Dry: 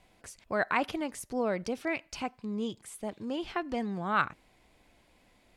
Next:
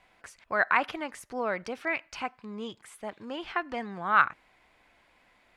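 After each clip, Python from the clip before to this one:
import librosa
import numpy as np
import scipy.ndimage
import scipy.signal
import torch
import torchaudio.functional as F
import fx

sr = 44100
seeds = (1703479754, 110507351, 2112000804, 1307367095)

y = fx.peak_eq(x, sr, hz=1500.0, db=14.0, octaves=2.5)
y = y * 10.0 ** (-7.0 / 20.0)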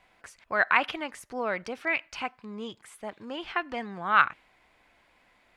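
y = fx.dynamic_eq(x, sr, hz=3000.0, q=1.5, threshold_db=-44.0, ratio=4.0, max_db=7)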